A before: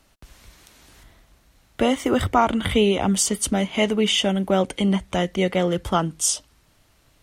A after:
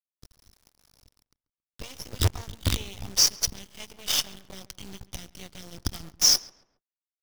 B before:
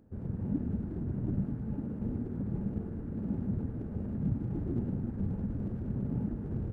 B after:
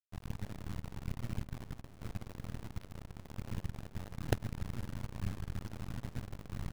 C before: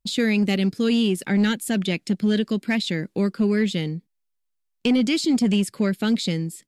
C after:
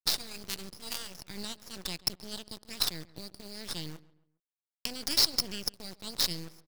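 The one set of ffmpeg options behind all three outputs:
-filter_complex "[0:a]firequalizer=gain_entry='entry(110,0);entry(210,-23);entry(410,-23);entry(1500,-25);entry(5400,9);entry(8400,-29)':delay=0.05:min_phase=1,acrusher=bits=5:dc=4:mix=0:aa=0.000001,aeval=exprs='sgn(val(0))*max(abs(val(0))-0.00596,0)':c=same,asplit=2[a][b];[b]adelay=137,lowpass=f=2.1k:p=1,volume=-18.5dB,asplit=2[c][d];[d]adelay=137,lowpass=f=2.1k:p=1,volume=0.38,asplit=2[e][f];[f]adelay=137,lowpass=f=2.1k:p=1,volume=0.38[g];[c][e][g]amix=inputs=3:normalize=0[h];[a][h]amix=inputs=2:normalize=0,volume=4dB"

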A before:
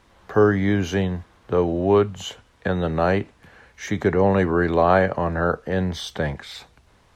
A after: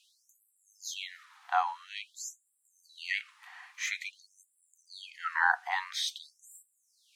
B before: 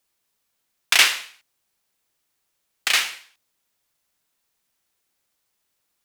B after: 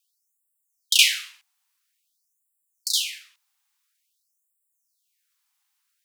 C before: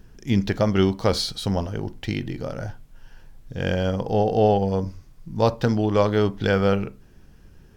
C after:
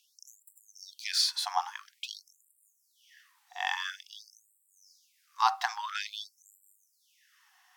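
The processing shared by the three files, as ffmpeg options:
-af "afreqshift=200,afftfilt=real='re*gte(b*sr/1024,690*pow(7400/690,0.5+0.5*sin(2*PI*0.49*pts/sr)))':imag='im*gte(b*sr/1024,690*pow(7400/690,0.5+0.5*sin(2*PI*0.49*pts/sr)))':win_size=1024:overlap=0.75"

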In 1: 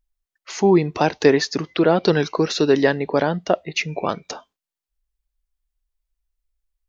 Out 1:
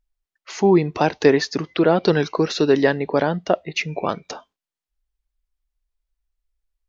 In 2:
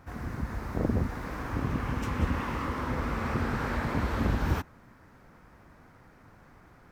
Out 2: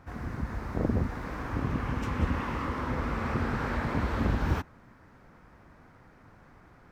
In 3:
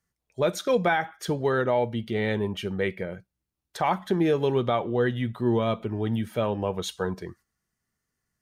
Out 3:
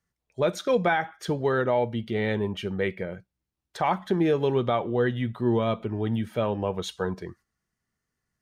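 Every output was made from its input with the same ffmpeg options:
-af "highshelf=f=7.9k:g=-8.5"

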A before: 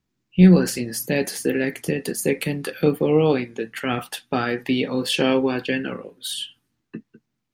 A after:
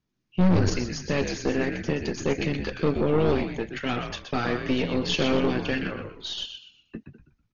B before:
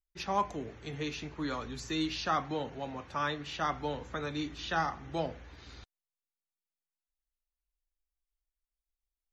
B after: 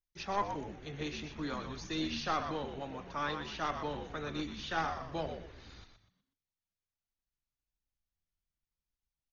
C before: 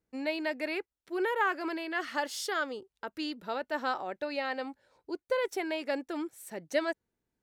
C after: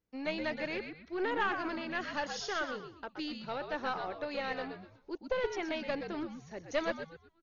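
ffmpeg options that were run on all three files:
-filter_complex "[0:a]asplit=5[a][b][c][d][e];[b]adelay=123,afreqshift=-82,volume=-7.5dB[f];[c]adelay=246,afreqshift=-164,volume=-17.1dB[g];[d]adelay=369,afreqshift=-246,volume=-26.8dB[h];[e]adelay=492,afreqshift=-328,volume=-36.4dB[i];[a][f][g][h][i]amix=inputs=5:normalize=0,aeval=exprs='(tanh(7.08*val(0)+0.65)-tanh(0.65))/7.08':c=same" -ar 48000 -c:a ac3 -b:a 32k

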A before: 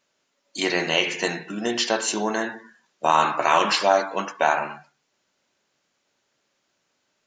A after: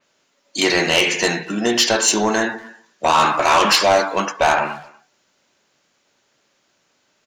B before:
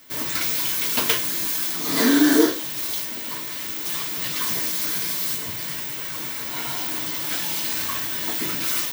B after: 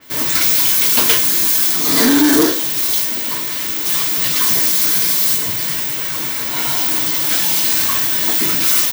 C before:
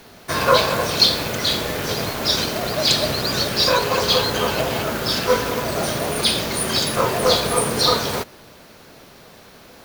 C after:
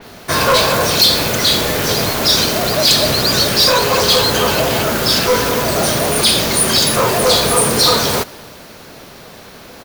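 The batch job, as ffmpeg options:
-filter_complex "[0:a]asoftclip=type=tanh:threshold=-16dB,asplit=2[a][b];[b]adelay=240,highpass=300,lowpass=3.4k,asoftclip=type=hard:threshold=-25.5dB,volume=-21dB[c];[a][c]amix=inputs=2:normalize=0,adynamicequalizer=threshold=0.0158:dfrequency=4100:dqfactor=0.7:tfrequency=4100:tqfactor=0.7:attack=5:release=100:ratio=0.375:range=2:mode=boostabove:tftype=highshelf,volume=8dB"

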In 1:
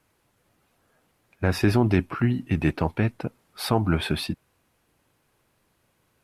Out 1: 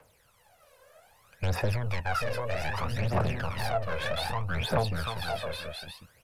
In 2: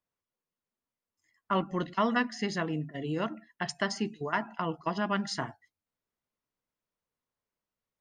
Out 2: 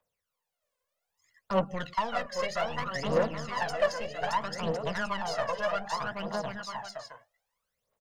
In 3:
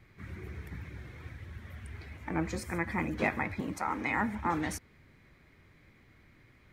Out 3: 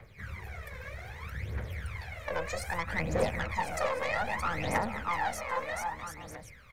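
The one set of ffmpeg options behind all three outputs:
-filter_complex "[0:a]asplit=2[a][b];[b]aecho=0:1:620|1054|1358|1570|1719:0.631|0.398|0.251|0.158|0.1[c];[a][c]amix=inputs=2:normalize=0,acrossover=split=210|590|2200[d][e][f][g];[d]acompressor=threshold=-25dB:ratio=4[h];[e]acompressor=threshold=-38dB:ratio=4[i];[f]acompressor=threshold=-36dB:ratio=4[j];[g]acompressor=threshold=-46dB:ratio=4[k];[h][i][j][k]amix=inputs=4:normalize=0,aeval=exprs='(tanh(35.5*val(0)+0.35)-tanh(0.35))/35.5':c=same,lowshelf=f=410:t=q:w=3:g=-7,aphaser=in_gain=1:out_gain=1:delay=2:decay=0.73:speed=0.63:type=triangular,volume=4dB"

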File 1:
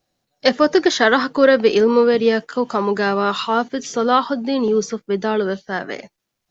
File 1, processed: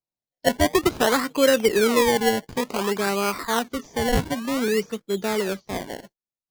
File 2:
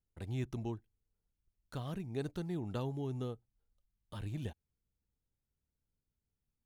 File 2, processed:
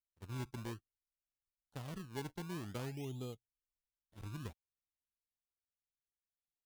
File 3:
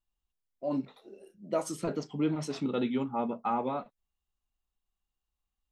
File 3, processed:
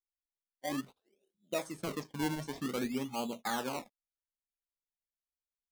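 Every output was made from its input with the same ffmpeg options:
-filter_complex "[0:a]agate=range=-19dB:threshold=-42dB:ratio=16:detection=peak,acrossover=split=3000[a][b];[a]acrusher=samples=24:mix=1:aa=0.000001:lfo=1:lforange=24:lforate=0.54[c];[b]acompressor=threshold=-47dB:ratio=6[d];[c][d]amix=inputs=2:normalize=0,volume=-5dB"

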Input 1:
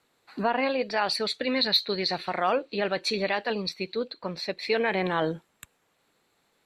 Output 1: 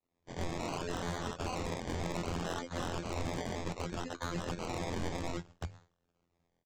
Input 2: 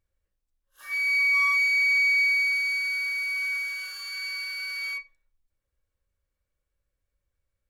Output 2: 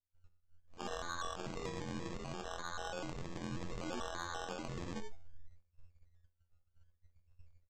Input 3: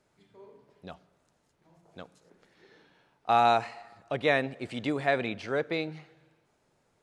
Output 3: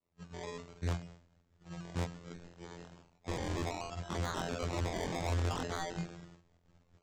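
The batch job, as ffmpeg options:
-filter_complex "[0:a]afftfilt=real='re*lt(hypot(re,im),0.0501)':imag='im*lt(hypot(re,im),0.0501)':win_size=1024:overlap=0.75,afftfilt=real='hypot(re,im)*cos(PI*b)':imag='0':win_size=2048:overlap=0.75,tiltshelf=f=1.5k:g=3,bandreject=f=49.41:t=h:w=4,bandreject=f=98.82:t=h:w=4,bandreject=f=148.23:t=h:w=4,acrossover=split=130|800[a][b][c];[a]dynaudnorm=f=130:g=3:m=14.5dB[d];[d][b][c]amix=inputs=3:normalize=0,agate=range=-33dB:threshold=-57dB:ratio=3:detection=peak,aresample=16000,acrusher=samples=9:mix=1:aa=0.000001:lfo=1:lforange=5.4:lforate=0.64,aresample=44100,asoftclip=type=tanh:threshold=-39.5dB,volume=11dB"

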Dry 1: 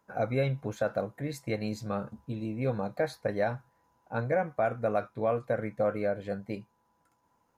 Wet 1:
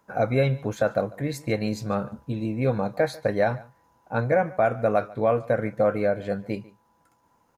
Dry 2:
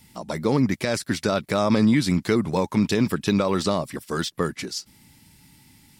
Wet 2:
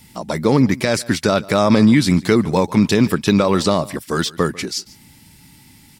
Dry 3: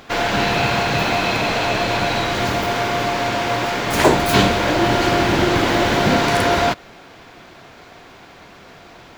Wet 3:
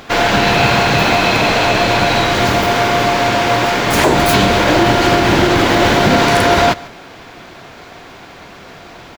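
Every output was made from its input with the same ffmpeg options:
-filter_complex "[0:a]asplit=2[a][b];[b]aecho=0:1:145:0.0841[c];[a][c]amix=inputs=2:normalize=0,alimiter=level_in=7.5dB:limit=-1dB:release=50:level=0:latency=1,volume=-1dB"

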